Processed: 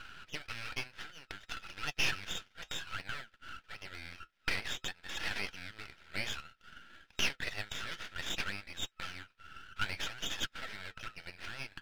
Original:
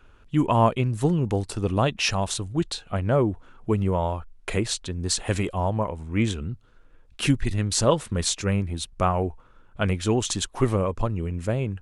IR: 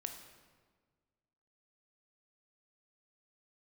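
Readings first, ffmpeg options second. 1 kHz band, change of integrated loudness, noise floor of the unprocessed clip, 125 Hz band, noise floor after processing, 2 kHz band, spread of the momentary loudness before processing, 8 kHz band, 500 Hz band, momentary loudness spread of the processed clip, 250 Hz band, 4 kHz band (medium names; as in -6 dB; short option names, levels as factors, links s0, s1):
-18.5 dB, -14.0 dB, -53 dBFS, -27.0 dB, -71 dBFS, -3.0 dB, 7 LU, -15.5 dB, -26.5 dB, 15 LU, -27.0 dB, -6.5 dB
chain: -filter_complex "[0:a]asplit=2[s0][s1];[s1]highpass=f=720:p=1,volume=14.1,asoftclip=type=tanh:threshold=0.473[s2];[s0][s2]amix=inputs=2:normalize=0,lowpass=f=2100:p=1,volume=0.501,acompressor=threshold=0.02:ratio=2,afftfilt=real='re*between(b*sr/4096,1300,3800)':imag='im*between(b*sr/4096,1300,3800)':win_size=4096:overlap=0.75,aeval=exprs='max(val(0),0)':c=same,flanger=delay=3.5:depth=7.4:regen=-58:speed=0.57:shape=sinusoidal,volume=2.24"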